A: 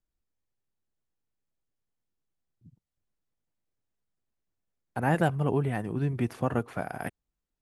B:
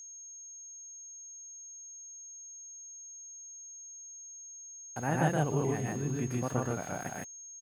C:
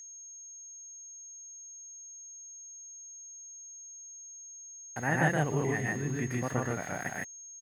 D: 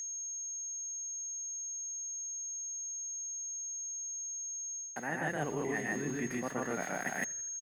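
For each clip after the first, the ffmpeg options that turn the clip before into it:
ffmpeg -i in.wav -af "aecho=1:1:119.5|151.6:0.794|0.891,aeval=exprs='val(0)*gte(abs(val(0)),0.00891)':channel_layout=same,aeval=exprs='val(0)+0.0126*sin(2*PI*6500*n/s)':channel_layout=same,volume=-7dB" out.wav
ffmpeg -i in.wav -af "equalizer=frequency=1900:width_type=o:width=0.37:gain=14" out.wav
ffmpeg -i in.wav -filter_complex "[0:a]highpass=frequency=180:width=0.5412,highpass=frequency=180:width=1.3066,areverse,acompressor=threshold=-40dB:ratio=6,areverse,asplit=5[link_01][link_02][link_03][link_04][link_05];[link_02]adelay=83,afreqshift=-63,volume=-23dB[link_06];[link_03]adelay=166,afreqshift=-126,volume=-28dB[link_07];[link_04]adelay=249,afreqshift=-189,volume=-33.1dB[link_08];[link_05]adelay=332,afreqshift=-252,volume=-38.1dB[link_09];[link_01][link_06][link_07][link_08][link_09]amix=inputs=5:normalize=0,volume=7.5dB" out.wav

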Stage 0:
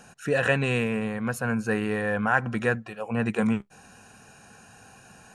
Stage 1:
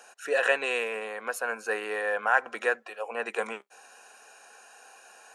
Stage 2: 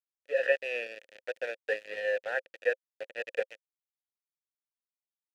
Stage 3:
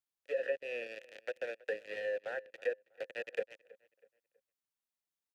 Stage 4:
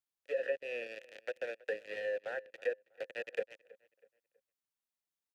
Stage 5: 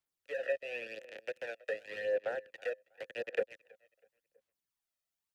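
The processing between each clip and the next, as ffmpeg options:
ffmpeg -i in.wav -af "highpass=frequency=440:width=0.5412,highpass=frequency=440:width=1.3066" out.wav
ffmpeg -i in.wav -filter_complex "[0:a]aeval=exprs='val(0)*gte(abs(val(0)),0.0447)':channel_layout=same,dynaudnorm=framelen=110:gausssize=7:maxgain=10dB,asplit=3[link_01][link_02][link_03];[link_01]bandpass=frequency=530:width_type=q:width=8,volume=0dB[link_04];[link_02]bandpass=frequency=1840:width_type=q:width=8,volume=-6dB[link_05];[link_03]bandpass=frequency=2480:width_type=q:width=8,volume=-9dB[link_06];[link_04][link_05][link_06]amix=inputs=3:normalize=0,volume=-2.5dB" out.wav
ffmpeg -i in.wav -filter_complex "[0:a]acrossover=split=410[link_01][link_02];[link_02]acompressor=threshold=-41dB:ratio=5[link_03];[link_01][link_03]amix=inputs=2:normalize=0,asplit=2[link_04][link_05];[link_05]adelay=323,lowpass=frequency=3100:poles=1,volume=-21.5dB,asplit=2[link_06][link_07];[link_07]adelay=323,lowpass=frequency=3100:poles=1,volume=0.37,asplit=2[link_08][link_09];[link_09]adelay=323,lowpass=frequency=3100:poles=1,volume=0.37[link_10];[link_04][link_06][link_08][link_10]amix=inputs=4:normalize=0,volume=1dB" out.wav
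ffmpeg -i in.wav -af anull out.wav
ffmpeg -i in.wav -filter_complex "[0:a]acrossover=split=260|890[link_01][link_02][link_03];[link_02]volume=31.5dB,asoftclip=hard,volume=-31.5dB[link_04];[link_01][link_04][link_03]amix=inputs=3:normalize=0,aphaser=in_gain=1:out_gain=1:delay=1.6:decay=0.51:speed=0.9:type=sinusoidal" out.wav

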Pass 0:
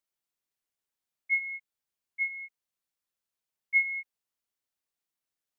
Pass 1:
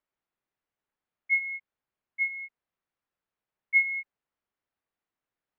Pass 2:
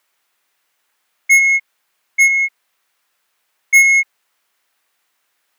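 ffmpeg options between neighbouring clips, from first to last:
ffmpeg -i in.wav -af "lowpass=2000,volume=6dB" out.wav
ffmpeg -i in.wav -filter_complex "[0:a]asplit=2[link_01][link_02];[link_02]highpass=frequency=720:poles=1,volume=20dB,asoftclip=type=tanh:threshold=-14dB[link_03];[link_01][link_03]amix=inputs=2:normalize=0,lowpass=frequency=2100:poles=1,volume=-6dB,crystalizer=i=8.5:c=0,volume=3.5dB" out.wav

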